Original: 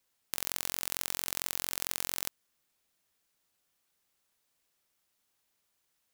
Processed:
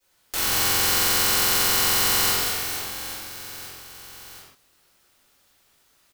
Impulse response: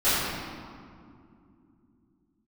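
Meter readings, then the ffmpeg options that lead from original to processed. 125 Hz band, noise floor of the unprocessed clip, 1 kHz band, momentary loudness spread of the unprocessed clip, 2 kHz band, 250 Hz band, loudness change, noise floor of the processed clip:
+18.5 dB, -78 dBFS, +19.0 dB, 4 LU, +17.5 dB, +17.0 dB, +14.0 dB, -63 dBFS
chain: -filter_complex "[0:a]aecho=1:1:190|456|828.4|1350|2080:0.631|0.398|0.251|0.158|0.1[s0];[1:a]atrim=start_sample=2205,afade=t=out:st=0.24:d=0.01,atrim=end_sample=11025[s1];[s0][s1]afir=irnorm=-1:irlink=0"

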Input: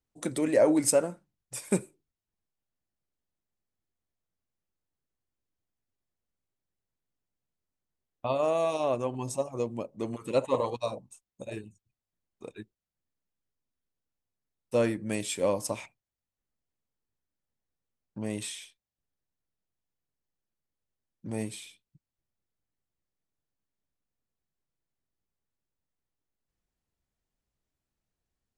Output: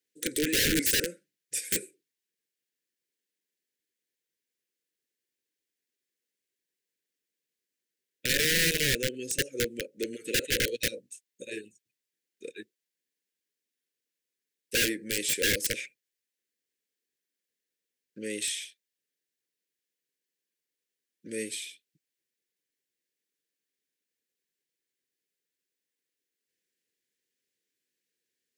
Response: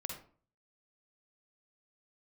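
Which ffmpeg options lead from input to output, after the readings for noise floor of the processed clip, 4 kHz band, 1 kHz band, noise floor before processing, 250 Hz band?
under -85 dBFS, +13.5 dB, -20.0 dB, under -85 dBFS, -3.5 dB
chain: -af "highpass=460,acontrast=73,aeval=exprs='(mod(8.91*val(0)+1,2)-1)/8.91':c=same,asuperstop=centerf=900:order=12:qfactor=0.85"

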